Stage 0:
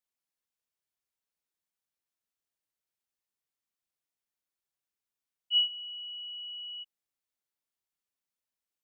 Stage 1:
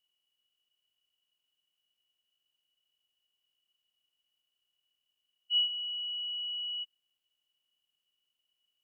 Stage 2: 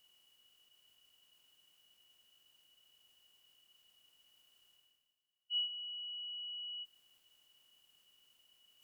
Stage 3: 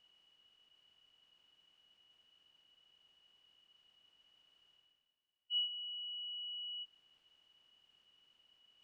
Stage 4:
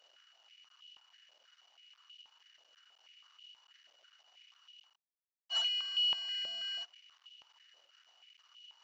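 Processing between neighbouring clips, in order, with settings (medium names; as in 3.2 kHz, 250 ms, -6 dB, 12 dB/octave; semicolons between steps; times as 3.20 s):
spectral levelling over time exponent 0.6; trim -3 dB
peaking EQ 2.8 kHz -3 dB; reverse; upward compressor, threshold -47 dBFS; reverse; trim -5 dB
low-pass 3.6 kHz 12 dB/octave; trim +1.5 dB
CVSD coder 32 kbps; step-sequenced high-pass 6.2 Hz 580–2900 Hz; trim +1.5 dB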